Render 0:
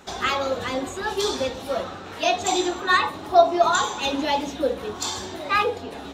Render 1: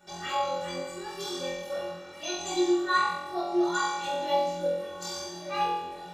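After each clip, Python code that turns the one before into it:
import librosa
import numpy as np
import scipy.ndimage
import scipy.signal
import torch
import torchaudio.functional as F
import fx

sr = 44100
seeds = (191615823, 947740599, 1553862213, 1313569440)

y = fx.stiff_resonator(x, sr, f0_hz=170.0, decay_s=0.29, stiffness=0.03)
y = fx.room_flutter(y, sr, wall_m=3.9, rt60_s=0.9)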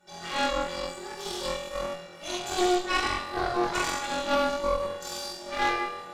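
y = fx.rev_schroeder(x, sr, rt60_s=0.95, comb_ms=32, drr_db=-1.5)
y = fx.cheby_harmonics(y, sr, harmonics=(4,), levels_db=(-7,), full_scale_db=-13.0)
y = y * 10.0 ** (-4.0 / 20.0)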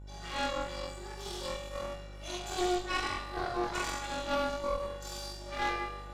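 y = fx.dmg_buzz(x, sr, base_hz=50.0, harmonics=21, level_db=-40.0, tilt_db=-9, odd_only=False)
y = y * 10.0 ** (-6.5 / 20.0)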